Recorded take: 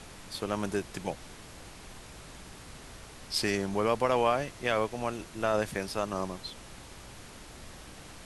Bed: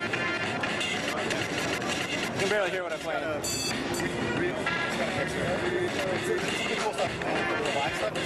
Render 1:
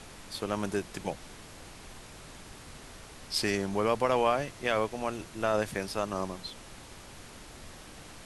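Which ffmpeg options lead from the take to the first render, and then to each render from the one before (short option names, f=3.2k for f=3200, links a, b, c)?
-af "bandreject=f=60:t=h:w=4,bandreject=f=120:t=h:w=4,bandreject=f=180:t=h:w=4"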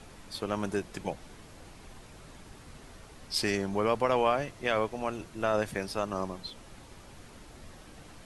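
-af "afftdn=nr=6:nf=-49"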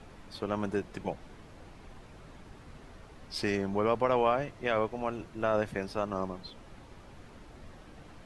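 -af "lowpass=f=2.4k:p=1"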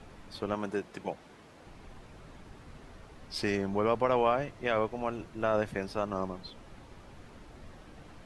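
-filter_complex "[0:a]asettb=1/sr,asplit=3[a][b][c];[a]atrim=end=0.544[d];[b]atrim=start=0.54:end=1.67,asetpts=PTS-STARTPTS,afade=t=in:d=0.004:c=qsin,afade=t=out:st=1.126:d=0.004:c=qsin,highpass=f=230:p=1[e];[c]atrim=start=1.666[f];[d][e]acrossfade=d=0.004:c1=hsin:c2=qsin[g];[g][f]acrossfade=d=0.004:c1=qsin:c2=hsin"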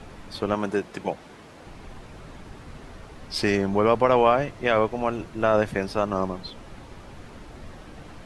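-af "volume=8dB"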